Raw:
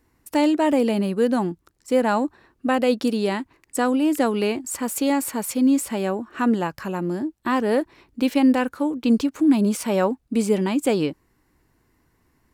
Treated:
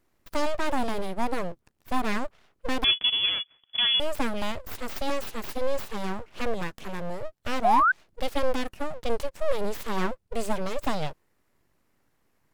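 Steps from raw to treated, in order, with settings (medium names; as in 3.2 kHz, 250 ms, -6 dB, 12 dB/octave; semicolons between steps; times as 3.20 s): full-wave rectifier; 2.84–4.00 s: frequency inversion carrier 3.4 kHz; 7.64–7.92 s: painted sound rise 660–1600 Hz -15 dBFS; trim -4.5 dB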